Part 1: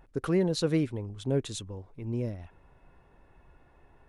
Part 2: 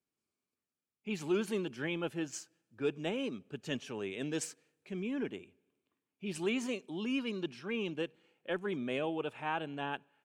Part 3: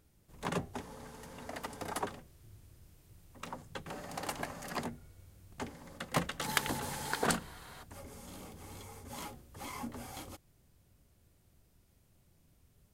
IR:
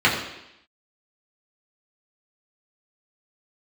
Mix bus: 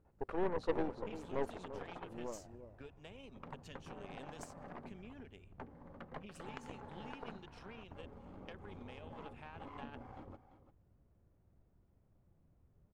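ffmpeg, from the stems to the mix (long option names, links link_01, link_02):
-filter_complex "[0:a]bandpass=frequency=620:width_type=q:width=1.4:csg=0,adelay=50,volume=-1.5dB,asplit=2[link_01][link_02];[link_02]volume=-10.5dB[link_03];[1:a]equalizer=frequency=320:width_type=o:width=0.22:gain=-14.5,acompressor=threshold=-43dB:ratio=16,volume=-4.5dB[link_04];[2:a]lowpass=1100,acompressor=threshold=-44dB:ratio=8,volume=0.5dB,asplit=2[link_05][link_06];[link_06]volume=-12.5dB[link_07];[link_03][link_07]amix=inputs=2:normalize=0,aecho=0:1:344:1[link_08];[link_01][link_04][link_05][link_08]amix=inputs=4:normalize=0,aeval=exprs='0.0944*(cos(1*acos(clip(val(0)/0.0944,-1,1)))-cos(1*PI/2))+0.0188*(cos(3*acos(clip(val(0)/0.0944,-1,1)))-cos(3*PI/2))+0.0119*(cos(4*acos(clip(val(0)/0.0944,-1,1)))-cos(4*PI/2))+0.00531*(cos(5*acos(clip(val(0)/0.0944,-1,1)))-cos(5*PI/2))+0.00531*(cos(8*acos(clip(val(0)/0.0944,-1,1)))-cos(8*PI/2))':channel_layout=same"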